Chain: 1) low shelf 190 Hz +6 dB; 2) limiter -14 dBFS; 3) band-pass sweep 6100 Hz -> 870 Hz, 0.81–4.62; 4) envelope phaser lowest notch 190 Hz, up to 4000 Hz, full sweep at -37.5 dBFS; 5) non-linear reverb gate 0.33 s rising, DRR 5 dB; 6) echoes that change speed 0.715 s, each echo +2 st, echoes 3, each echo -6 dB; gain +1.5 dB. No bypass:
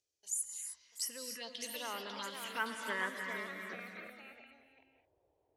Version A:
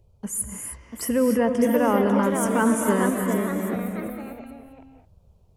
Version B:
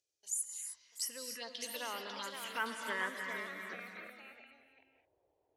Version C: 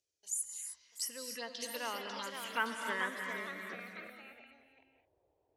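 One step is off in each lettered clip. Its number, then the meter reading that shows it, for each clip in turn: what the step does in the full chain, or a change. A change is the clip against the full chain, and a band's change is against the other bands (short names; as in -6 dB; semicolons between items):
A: 3, 250 Hz band +20.5 dB; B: 1, 250 Hz band -1.5 dB; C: 2, momentary loudness spread change -1 LU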